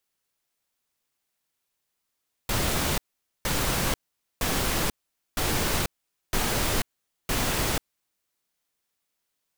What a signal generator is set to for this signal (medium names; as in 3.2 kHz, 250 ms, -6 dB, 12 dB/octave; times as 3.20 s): noise bursts pink, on 0.49 s, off 0.47 s, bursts 6, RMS -25.5 dBFS